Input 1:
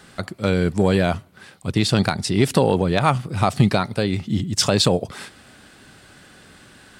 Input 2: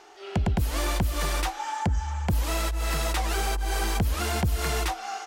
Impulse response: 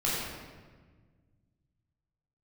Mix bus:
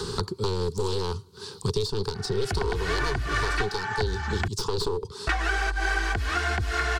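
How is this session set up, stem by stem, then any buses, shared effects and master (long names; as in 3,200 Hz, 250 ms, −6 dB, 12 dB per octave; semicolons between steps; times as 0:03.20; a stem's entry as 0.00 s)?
−9.5 dB, 0.00 s, no send, wavefolder on the positive side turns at −20.5 dBFS; drawn EQ curve 110 Hz 0 dB, 300 Hz −9 dB, 420 Hz +13 dB, 650 Hz −28 dB, 920 Hz +3 dB, 2,100 Hz −19 dB, 4,400 Hz +9 dB, 12,000 Hz −5 dB
−6.0 dB, 2.15 s, muted 0:04.48–0:05.27, no send, low-pass filter 5,400 Hz 12 dB per octave; parametric band 1,600 Hz +14 dB 0.83 octaves; comb filter 2.7 ms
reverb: not used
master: multiband upward and downward compressor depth 100%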